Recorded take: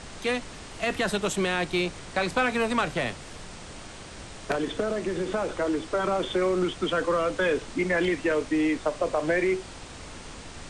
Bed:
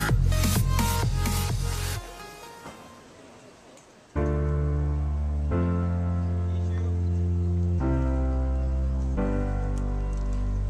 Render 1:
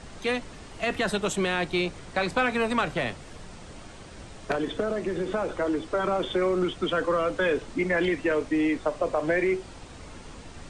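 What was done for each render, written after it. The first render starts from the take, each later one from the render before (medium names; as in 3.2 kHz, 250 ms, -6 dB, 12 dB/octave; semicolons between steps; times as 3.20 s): noise reduction 6 dB, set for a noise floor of -43 dBFS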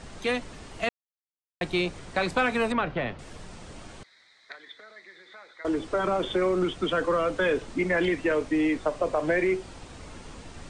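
0.89–1.61 s: mute; 2.72–3.19 s: distance through air 280 m; 4.03–5.65 s: two resonant band-passes 2.8 kHz, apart 0.93 oct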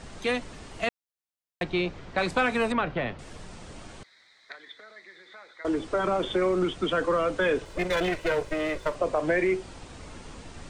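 1.63–2.18 s: distance through air 130 m; 7.65–8.95 s: comb filter that takes the minimum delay 2 ms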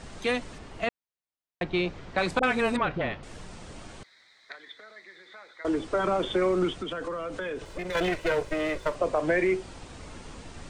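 0.58–1.74 s: treble shelf 4.4 kHz -9.5 dB; 2.39–3.41 s: phase dispersion highs, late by 42 ms, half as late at 560 Hz; 6.73–7.95 s: compression, threshold -30 dBFS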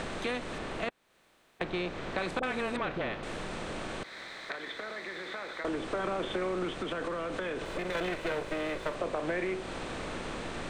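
spectral levelling over time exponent 0.6; compression 2:1, threshold -38 dBFS, peak gain reduction 11 dB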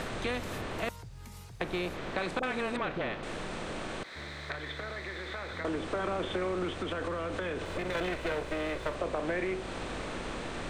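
add bed -21.5 dB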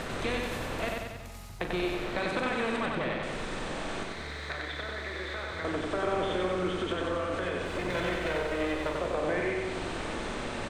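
doubling 39 ms -10.5 dB; feedback delay 93 ms, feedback 60%, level -3 dB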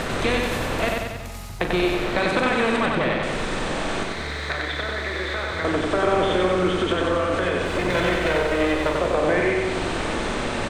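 trim +9.5 dB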